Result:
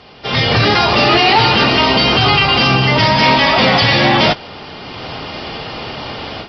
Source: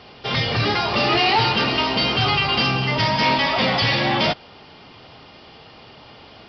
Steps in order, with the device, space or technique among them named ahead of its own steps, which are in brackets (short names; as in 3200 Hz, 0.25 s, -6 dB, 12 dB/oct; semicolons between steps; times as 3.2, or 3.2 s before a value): low-bitrate web radio (AGC gain up to 15 dB; limiter -7.5 dBFS, peak gain reduction 6 dB; gain +2.5 dB; AAC 48 kbps 44100 Hz)